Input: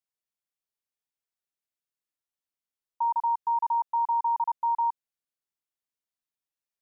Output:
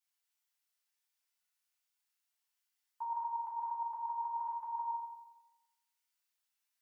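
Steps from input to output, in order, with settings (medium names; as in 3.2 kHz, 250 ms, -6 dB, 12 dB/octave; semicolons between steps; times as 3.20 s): high-pass 1.1 kHz 12 dB/octave; peak limiter -38 dBFS, peak gain reduction 12 dB; FDN reverb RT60 0.99 s, low-frequency decay 1.4×, high-frequency decay 0.95×, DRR -6.5 dB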